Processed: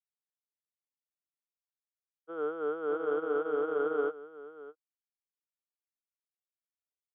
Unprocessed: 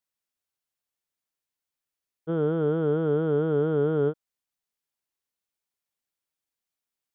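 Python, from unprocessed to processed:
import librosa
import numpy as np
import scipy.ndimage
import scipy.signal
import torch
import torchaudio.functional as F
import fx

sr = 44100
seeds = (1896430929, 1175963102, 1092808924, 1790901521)

p1 = fx.cabinet(x, sr, low_hz=410.0, low_slope=24, high_hz=2700.0, hz=(410.0, 590.0, 910.0, 1300.0, 1800.0), db=(-4, -8, -5, 6, -6))
p2 = p1 + fx.echo_single(p1, sr, ms=615, db=-6.0, dry=0)
p3 = fx.upward_expand(p2, sr, threshold_db=-44.0, expansion=2.5)
y = p3 * 10.0 ** (2.5 / 20.0)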